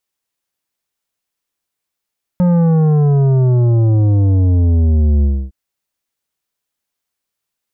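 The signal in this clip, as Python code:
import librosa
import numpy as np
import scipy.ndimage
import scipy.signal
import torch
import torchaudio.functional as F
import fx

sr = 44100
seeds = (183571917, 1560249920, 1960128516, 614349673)

y = fx.sub_drop(sr, level_db=-10.0, start_hz=180.0, length_s=3.11, drive_db=10.0, fade_s=0.28, end_hz=65.0)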